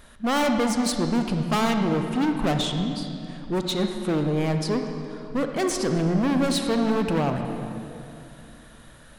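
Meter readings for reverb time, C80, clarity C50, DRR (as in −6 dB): 2.8 s, 6.0 dB, 5.0 dB, 5.0 dB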